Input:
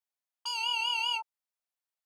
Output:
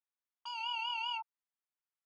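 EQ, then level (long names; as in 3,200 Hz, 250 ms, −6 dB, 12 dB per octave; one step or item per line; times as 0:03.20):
high-pass filter 830 Hz 24 dB per octave
head-to-tape spacing loss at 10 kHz 31 dB
notch filter 4,100 Hz, Q 13
+1.0 dB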